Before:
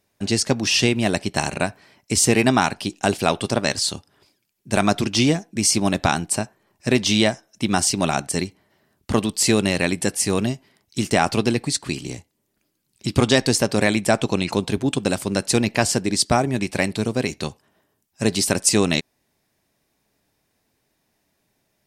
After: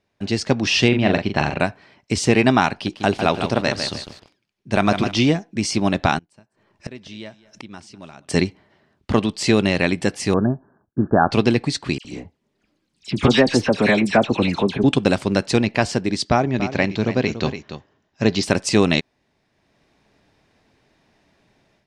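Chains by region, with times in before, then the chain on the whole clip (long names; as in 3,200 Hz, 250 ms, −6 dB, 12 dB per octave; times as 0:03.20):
0:00.88–0:01.60: low-pass filter 3,900 Hz + double-tracking delay 41 ms −6 dB
0:02.71–0:05.14: notch filter 7,500 Hz, Q 13 + feedback echo at a low word length 152 ms, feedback 35%, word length 6 bits, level −7 dB
0:06.18–0:08.29: notch filter 750 Hz, Q 11 + gate with flip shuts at −23 dBFS, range −28 dB + single-tap delay 203 ms −19.5 dB
0:10.34–0:11.31: Chebyshev low-pass filter 1,700 Hz, order 10 + noise gate with hold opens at −54 dBFS, closes at −60 dBFS
0:11.98–0:14.84: flanger 1.3 Hz, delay 3.4 ms, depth 1.7 ms, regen −60% + all-pass dispersion lows, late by 69 ms, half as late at 2,100 Hz
0:16.29–0:18.43: Butterworth low-pass 7,300 Hz 96 dB per octave + single-tap delay 287 ms −12.5 dB
whole clip: low-pass filter 4,100 Hz 12 dB per octave; automatic gain control; level −1 dB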